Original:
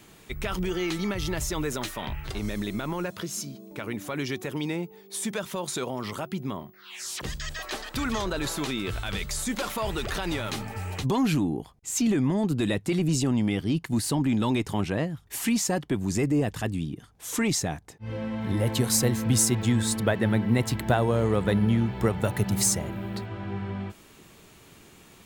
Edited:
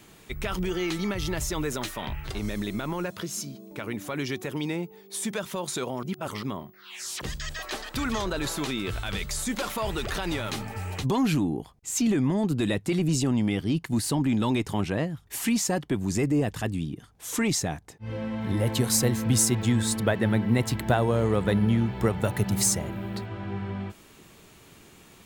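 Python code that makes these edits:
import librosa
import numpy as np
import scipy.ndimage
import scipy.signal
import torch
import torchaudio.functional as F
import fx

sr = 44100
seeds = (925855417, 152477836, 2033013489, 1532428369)

y = fx.edit(x, sr, fx.reverse_span(start_s=6.03, length_s=0.4), tone=tone)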